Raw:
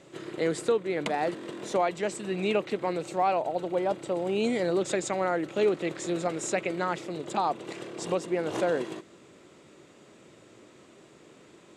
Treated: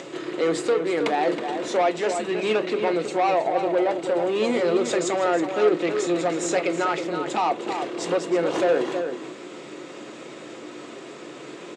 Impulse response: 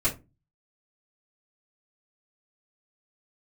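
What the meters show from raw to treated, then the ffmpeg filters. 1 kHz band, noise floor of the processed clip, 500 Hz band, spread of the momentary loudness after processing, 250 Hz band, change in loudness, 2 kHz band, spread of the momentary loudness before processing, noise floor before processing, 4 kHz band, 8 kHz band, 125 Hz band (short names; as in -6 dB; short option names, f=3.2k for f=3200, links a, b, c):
+5.5 dB, -40 dBFS, +6.0 dB, 17 LU, +5.5 dB, +5.5 dB, +6.0 dB, 6 LU, -55 dBFS, +6.5 dB, +4.5 dB, 0.0 dB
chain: -filter_complex "[0:a]acompressor=mode=upward:threshold=-38dB:ratio=2.5,asoftclip=type=tanh:threshold=-24dB,highpass=230,lowpass=6.1k,asplit=2[a][b];[b]adelay=320.7,volume=-7dB,highshelf=f=4k:g=-7.22[c];[a][c]amix=inputs=2:normalize=0,asplit=2[d][e];[1:a]atrim=start_sample=2205,highshelf=f=5.4k:g=11[f];[e][f]afir=irnorm=-1:irlink=0,volume=-17dB[g];[d][g]amix=inputs=2:normalize=0,volume=6.5dB"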